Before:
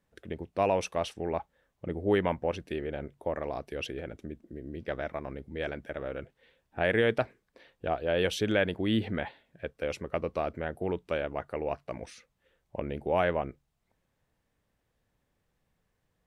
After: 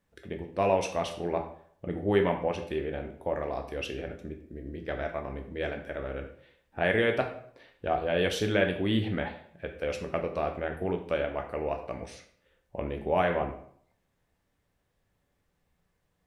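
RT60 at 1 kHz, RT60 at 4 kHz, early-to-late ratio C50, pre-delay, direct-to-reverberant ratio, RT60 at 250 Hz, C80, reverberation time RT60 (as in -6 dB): 0.60 s, 0.45 s, 9.0 dB, 10 ms, 3.5 dB, 0.55 s, 12.0 dB, 0.60 s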